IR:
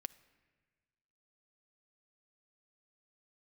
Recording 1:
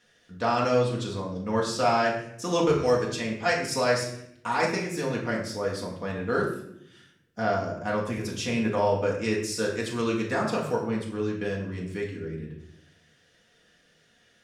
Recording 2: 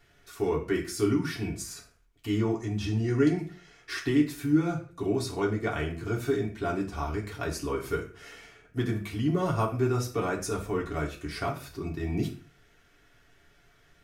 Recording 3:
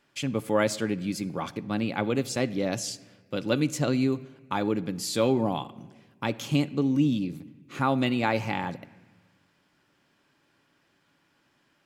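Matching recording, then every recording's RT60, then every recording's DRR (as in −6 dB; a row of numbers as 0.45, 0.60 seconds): 3; 0.75, 0.40, 1.5 seconds; −3.5, −3.0, 12.5 decibels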